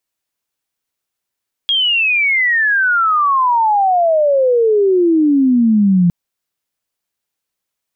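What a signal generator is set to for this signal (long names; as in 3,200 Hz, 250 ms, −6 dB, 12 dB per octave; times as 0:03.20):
glide logarithmic 3,300 Hz → 170 Hz −11.5 dBFS → −8 dBFS 4.41 s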